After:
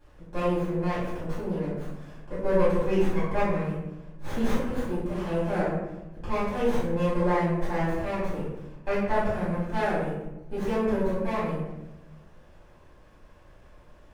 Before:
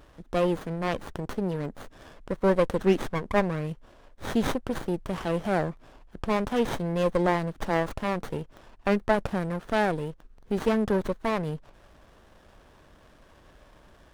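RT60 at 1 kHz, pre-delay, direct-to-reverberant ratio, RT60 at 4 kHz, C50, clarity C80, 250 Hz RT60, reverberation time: 0.90 s, 3 ms, −13.0 dB, 0.55 s, −0.5 dB, 3.5 dB, 1.3 s, 1.0 s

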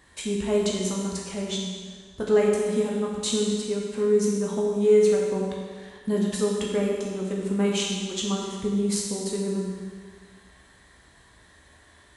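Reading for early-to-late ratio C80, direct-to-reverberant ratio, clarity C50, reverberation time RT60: 2.5 dB, −3.0 dB, 1.0 dB, 1.6 s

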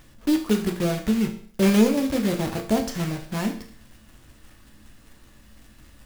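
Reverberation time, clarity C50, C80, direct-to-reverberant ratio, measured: 0.50 s, 9.5 dB, 13.5 dB, 3.5 dB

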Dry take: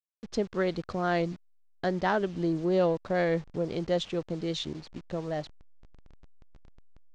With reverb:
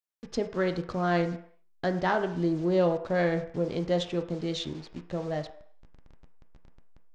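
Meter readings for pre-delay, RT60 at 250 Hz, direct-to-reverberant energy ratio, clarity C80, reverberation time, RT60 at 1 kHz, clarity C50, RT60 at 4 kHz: 3 ms, 0.45 s, 6.0 dB, 14.0 dB, 0.60 s, 0.65 s, 11.5 dB, 0.60 s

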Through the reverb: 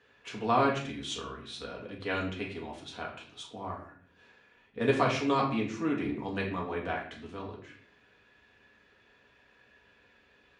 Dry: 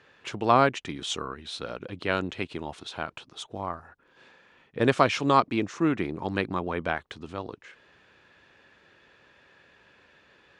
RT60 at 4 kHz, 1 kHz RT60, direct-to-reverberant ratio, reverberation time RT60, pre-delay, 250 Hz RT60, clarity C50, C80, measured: 0.40 s, 0.45 s, −3.0 dB, 0.50 s, 4 ms, 0.85 s, 7.0 dB, 10.0 dB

